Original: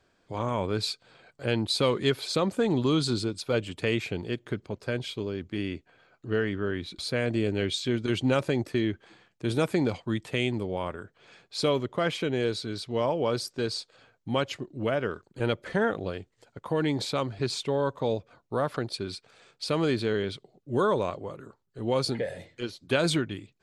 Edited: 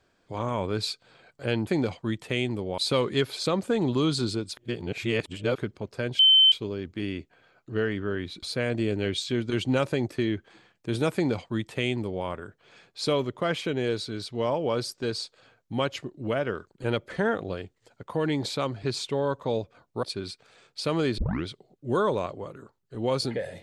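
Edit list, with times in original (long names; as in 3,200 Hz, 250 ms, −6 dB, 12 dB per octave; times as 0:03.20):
0:03.46–0:04.47: reverse
0:05.08: insert tone 3,080 Hz −13.5 dBFS 0.33 s
0:09.70–0:10.81: duplicate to 0:01.67
0:18.59–0:18.87: remove
0:20.02: tape start 0.28 s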